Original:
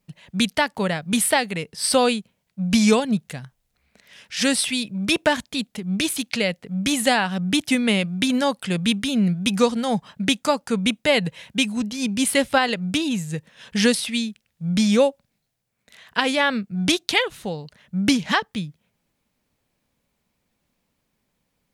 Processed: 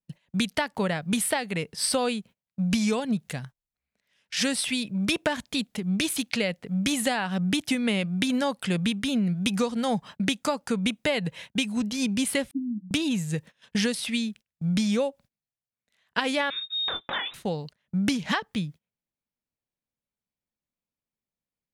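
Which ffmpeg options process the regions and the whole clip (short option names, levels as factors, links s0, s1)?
-filter_complex "[0:a]asettb=1/sr,asplit=3[s0][s1][s2];[s0]atrim=end=12.514[s3];[s1]atrim=start=12.51:end=12.91,asetpts=PTS-STARTPTS,afade=t=in:d=0.004:c=qsin,afade=t=out:st=0.396:d=0.004:c=qsin,asuperpass=centerf=240:order=20:qfactor=2.1,asplit=2[s4][s5];[s5]adelay=24,volume=0.224[s6];[s4][s6]amix=inputs=2:normalize=0,atrim=end_sample=17640[s7];[s2]atrim=start=12.906[s8];[s3][s7]acrossfade=d=0.004:c1=hsin:c2=qsin[s9];[s9][s8]acrossfade=d=0.004:c1=qsin:c2=hsin,asettb=1/sr,asplit=3[s10][s11][s12];[s10]atrim=end=16.504[s13];[s11]atrim=start=16.5:end=17.34,asetpts=PTS-STARTPTS,afade=t=in:d=0.004:c=qsin,afade=t=out:st=0.836:d=0.004:c=qsin,lowpass=f=3300:t=q:w=0.5098,lowpass=f=3300:t=q:w=0.6013,lowpass=f=3300:t=q:w=0.9,lowpass=f=3300:t=q:w=2.563,afreqshift=-3900,acompressor=threshold=0.0562:ratio=6:attack=3.2:release=140:knee=1:detection=peak,asplit=2[s14][s15];[s15]adelay=24,volume=0.447[s16];[s14][s16]amix=inputs=2:normalize=0,atrim=end_sample=37044[s17];[s12]atrim=start=17.336[s18];[s13][s17]acrossfade=d=0.004:c1=hsin:c2=qsin[s19];[s19][s18]acrossfade=d=0.004:c1=qsin:c2=hsin,agate=range=0.0794:threshold=0.00891:ratio=16:detection=peak,acompressor=threshold=0.0794:ratio=6,adynamicequalizer=threshold=0.0112:dfrequency=2900:dqfactor=0.7:tfrequency=2900:tqfactor=0.7:attack=5:release=100:ratio=0.375:range=2:mode=cutabove:tftype=highshelf"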